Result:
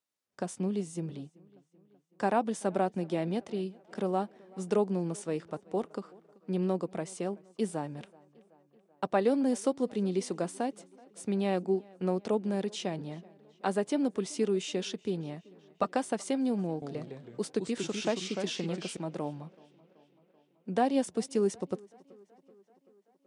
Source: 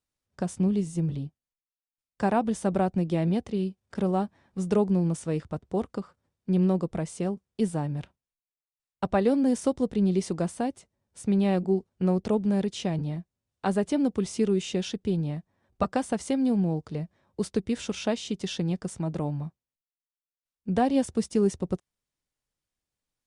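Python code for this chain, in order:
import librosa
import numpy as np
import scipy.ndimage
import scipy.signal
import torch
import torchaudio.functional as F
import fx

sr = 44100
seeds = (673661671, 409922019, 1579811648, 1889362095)

y = scipy.signal.sosfilt(scipy.signal.butter(2, 260.0, 'highpass', fs=sr, output='sos'), x)
y = fx.echo_pitch(y, sr, ms=128, semitones=-2, count=2, db_per_echo=-6.0, at=(16.69, 18.97))
y = fx.echo_tape(y, sr, ms=381, feedback_pct=68, wet_db=-23.0, lp_hz=4500.0, drive_db=17.0, wow_cents=27)
y = y * 10.0 ** (-2.0 / 20.0)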